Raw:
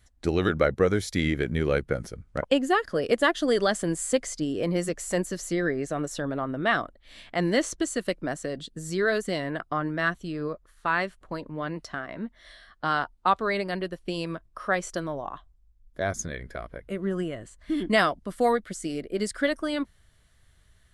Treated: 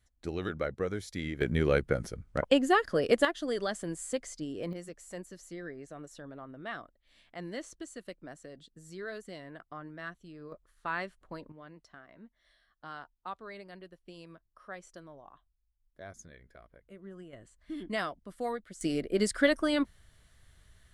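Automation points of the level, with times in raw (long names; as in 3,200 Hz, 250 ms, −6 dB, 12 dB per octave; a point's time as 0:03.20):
−11 dB
from 0:01.41 −1.5 dB
from 0:03.25 −9.5 dB
from 0:04.73 −16 dB
from 0:10.52 −9 dB
from 0:11.52 −18.5 dB
from 0:17.33 −12 dB
from 0:18.81 +0.5 dB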